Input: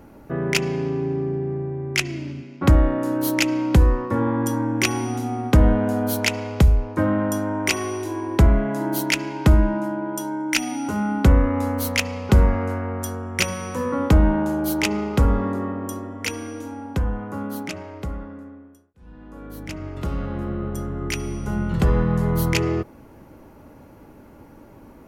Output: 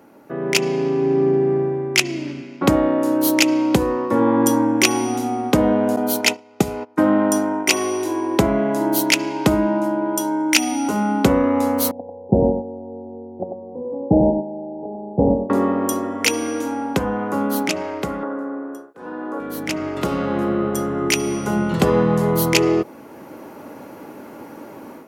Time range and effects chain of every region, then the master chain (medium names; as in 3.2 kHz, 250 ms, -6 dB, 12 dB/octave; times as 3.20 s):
5.96–7.69 s: gate -26 dBFS, range -23 dB + bass shelf 87 Hz -12 dB + comb of notches 560 Hz
11.91–15.50 s: gate -18 dBFS, range -13 dB + steep low-pass 830 Hz 72 dB/octave + delay 95 ms -6 dB
18.23–19.40 s: high-pass 84 Hz + high-order bell 680 Hz +13 dB 2.9 oct + compression 2.5:1, threshold -37 dBFS
whole clip: high-pass 250 Hz 12 dB/octave; dynamic bell 1.6 kHz, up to -6 dB, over -41 dBFS, Q 1.4; level rider